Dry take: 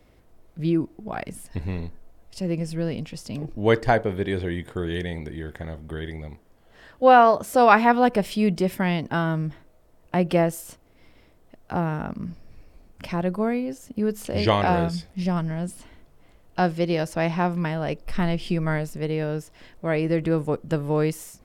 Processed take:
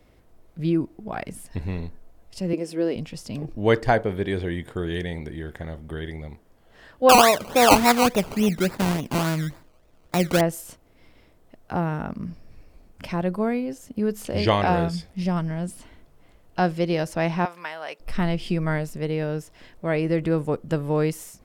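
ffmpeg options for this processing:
ffmpeg -i in.wav -filter_complex "[0:a]asettb=1/sr,asplit=3[link_01][link_02][link_03];[link_01]atrim=end=2.534[link_04];[link_02]atrim=start=2.53:end=2.96,asetpts=PTS-STARTPTS,afade=type=in:duration=0.004:curve=qsin,afade=type=out:start_time=0.426:duration=0.004:curve=qsin,highpass=frequency=350:width_type=q:width=2.4[link_05];[link_03]atrim=start=2.956[link_06];[link_04][link_05]acrossfade=duration=0.004:curve1=hsin:curve2=qsin[link_07];[link_07][link_06]acrossfade=duration=0.004:curve1=qsin:curve2=hsin,asettb=1/sr,asplit=3[link_08][link_09][link_10];[link_08]atrim=end=7.094[link_11];[link_09]atrim=start=7.09:end=10.41,asetpts=PTS-STARTPTS,afade=type=in:duration=0.004:curve=qsin,afade=type=out:start_time=3.316:duration=0.004:curve=qsin,acrusher=samples=20:mix=1:aa=0.000001:lfo=1:lforange=12:lforate=3.5[link_12];[link_10]atrim=start=10.406[link_13];[link_11][link_12]acrossfade=duration=0.004:curve1=hsin:curve2=qsin[link_14];[link_14][link_13]acrossfade=duration=0.004:curve1=qsin:curve2=hsin,asettb=1/sr,asplit=3[link_15][link_16][link_17];[link_15]atrim=end=17.454[link_18];[link_16]atrim=start=17.45:end=18,asetpts=PTS-STARTPTS,afade=type=in:duration=0.004:curve=qsin,afade=type=out:start_time=0.546:duration=0.004:curve=qsin,highpass=830[link_19];[link_17]atrim=start=17.996[link_20];[link_18][link_19]acrossfade=duration=0.004:curve1=hsin:curve2=qsin[link_21];[link_21][link_20]acrossfade=duration=0.004:curve1=qsin:curve2=hsin" out.wav

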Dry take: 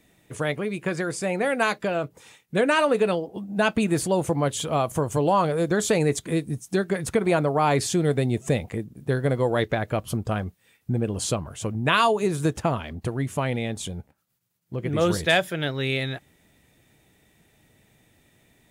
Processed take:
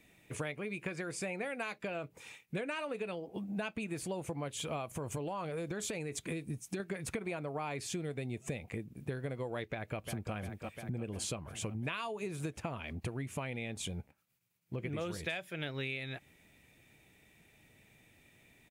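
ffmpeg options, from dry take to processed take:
ffmpeg -i in.wav -filter_complex "[0:a]asettb=1/sr,asplit=3[link_01][link_02][link_03];[link_01]atrim=end=4.854[link_04];[link_02]atrim=start=4.85:end=6.8,asetpts=PTS-STARTPTS,afade=type=in:duration=0.004:curve=qsin,afade=type=out:start_time=1.946:duration=0.004:curve=qsin,acompressor=threshold=-22dB:ratio=6:attack=3.2:release=140:knee=1:detection=peak[link_05];[link_03]atrim=start=6.796[link_06];[link_04][link_05]acrossfade=duration=0.004:curve1=hsin:curve2=qsin[link_07];[link_07][link_06]acrossfade=duration=0.004:curve1=qsin:curve2=hsin,asplit=2[link_08][link_09];[link_09]afade=type=in:start_time=9.69:duration=0.01,afade=type=out:start_time=10.33:duration=0.01,aecho=0:1:350|700|1050|1400|1750|2100|2450|2800:0.266073|0.172947|0.112416|0.0730702|0.0474956|0.0308721|0.0200669|0.0130435[link_10];[link_08][link_10]amix=inputs=2:normalize=0,equalizer=frequency=2400:width_type=o:width=0.41:gain=9,acompressor=threshold=-30dB:ratio=10,volume=-5dB" out.wav

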